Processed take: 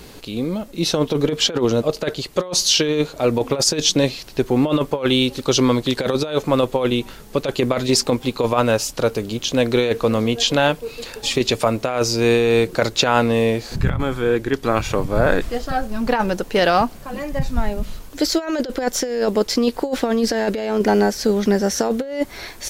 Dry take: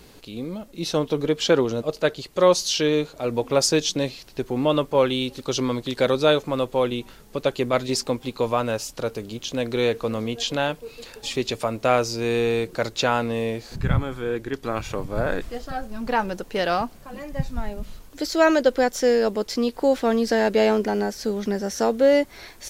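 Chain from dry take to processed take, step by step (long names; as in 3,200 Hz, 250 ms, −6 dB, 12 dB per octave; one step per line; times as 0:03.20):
compressor whose output falls as the input rises −22 dBFS, ratio −0.5
level +6 dB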